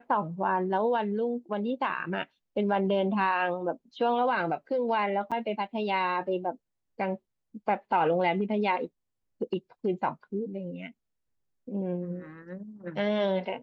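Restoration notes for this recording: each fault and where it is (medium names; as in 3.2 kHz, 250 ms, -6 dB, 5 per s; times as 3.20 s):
5.31–5.32 s: dropout 6.7 ms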